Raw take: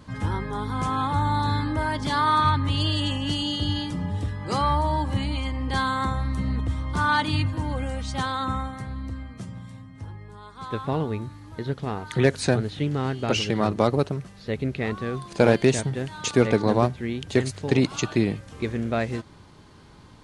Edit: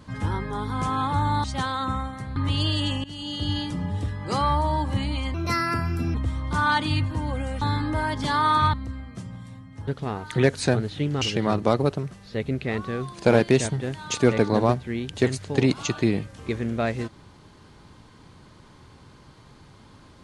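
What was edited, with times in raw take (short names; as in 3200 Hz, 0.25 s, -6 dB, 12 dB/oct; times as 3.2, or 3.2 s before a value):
1.44–2.56 swap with 8.04–8.96
3.24–3.74 fade in, from -19 dB
5.54–6.57 speed 128%
10.1–11.68 cut
13.02–13.35 cut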